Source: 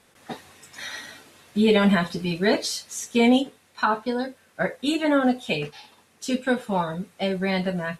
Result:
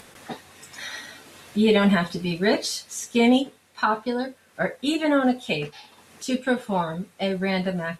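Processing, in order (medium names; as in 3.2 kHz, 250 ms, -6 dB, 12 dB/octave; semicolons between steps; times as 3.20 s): upward compressor, threshold -38 dBFS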